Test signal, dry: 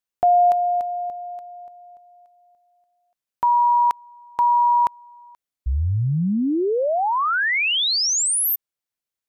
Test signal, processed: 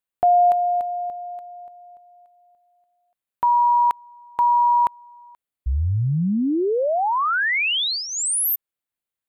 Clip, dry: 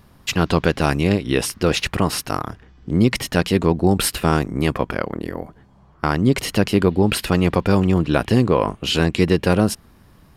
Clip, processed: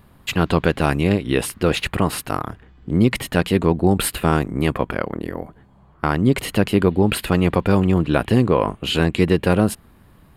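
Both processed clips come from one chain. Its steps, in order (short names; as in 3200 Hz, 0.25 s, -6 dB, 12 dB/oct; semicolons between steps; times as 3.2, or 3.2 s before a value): bell 5600 Hz -11.5 dB 0.5 oct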